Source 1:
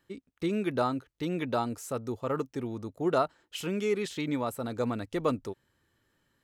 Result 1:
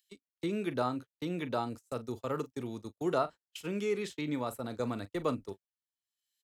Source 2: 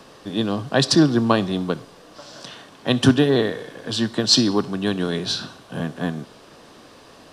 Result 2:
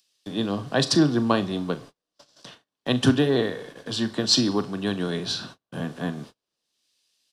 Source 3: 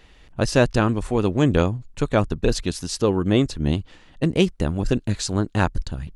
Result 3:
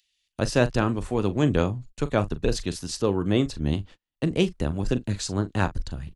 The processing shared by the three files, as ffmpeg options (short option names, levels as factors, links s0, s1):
-filter_complex "[0:a]asplit=2[s0][s1];[s1]adelay=40,volume=0.2[s2];[s0][s2]amix=inputs=2:normalize=0,agate=range=0.0112:threshold=0.0141:ratio=16:detection=peak,acrossover=split=120|1200|2900[s3][s4][s5][s6];[s6]acompressor=mode=upward:threshold=0.00631:ratio=2.5[s7];[s3][s4][s5][s7]amix=inputs=4:normalize=0,volume=0.631"